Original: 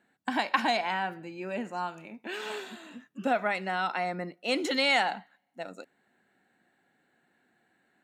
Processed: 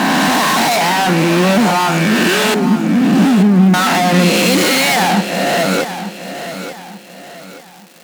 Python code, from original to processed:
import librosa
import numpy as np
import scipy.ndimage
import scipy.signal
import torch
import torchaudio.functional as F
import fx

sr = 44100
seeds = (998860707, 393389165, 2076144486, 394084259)

p1 = fx.spec_swells(x, sr, rise_s=1.06)
p2 = fx.cheby2_lowpass(p1, sr, hz=860.0, order=4, stop_db=50, at=(2.54, 3.74))
p3 = fx.fuzz(p2, sr, gain_db=46.0, gate_db=-53.0)
p4 = fx.dmg_crackle(p3, sr, seeds[0], per_s=420.0, level_db=-29.0)
p5 = fx.low_shelf_res(p4, sr, hz=120.0, db=-12.5, q=3.0)
y = p5 + fx.echo_feedback(p5, sr, ms=884, feedback_pct=37, wet_db=-11.0, dry=0)